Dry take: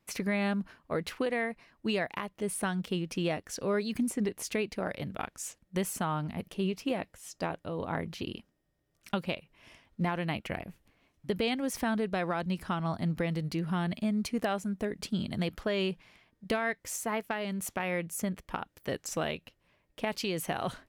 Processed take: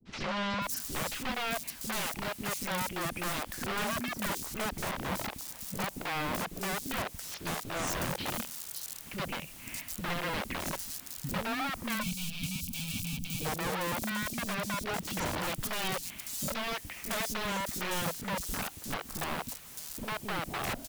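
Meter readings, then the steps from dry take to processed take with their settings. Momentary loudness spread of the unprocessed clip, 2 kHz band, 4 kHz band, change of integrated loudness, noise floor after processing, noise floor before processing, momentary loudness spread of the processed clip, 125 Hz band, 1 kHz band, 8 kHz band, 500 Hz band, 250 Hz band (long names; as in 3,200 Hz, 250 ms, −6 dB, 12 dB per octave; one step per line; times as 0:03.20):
7 LU, +1.5 dB, +3.5 dB, −1.0 dB, −48 dBFS, −75 dBFS, 5 LU, −4.0 dB, +1.5 dB, +4.0 dB, −5.5 dB, −6.0 dB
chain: graphic EQ with 10 bands 250 Hz +7 dB, 500 Hz −11 dB, 1,000 Hz −5 dB, 2,000 Hz −5 dB, 4,000 Hz −6 dB
auto-filter low-pass saw down 0.14 Hz 510–5,900 Hz
bit-depth reduction 10 bits, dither triangular
dynamic equaliser 1,400 Hz, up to −6 dB, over −52 dBFS, Q 1.2
sine wavefolder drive 5 dB, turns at −17 dBFS
downward compressor 16 to 1, threshold −28 dBFS, peak gain reduction 10 dB
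downward expander −49 dBFS
wrap-around overflow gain 31 dB
gain on a spectral selection 0:11.97–0:13.40, 280–2,200 Hz −24 dB
three-band delay without the direct sound lows, mids, highs 50/610 ms, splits 400/4,700 Hz
level +3.5 dB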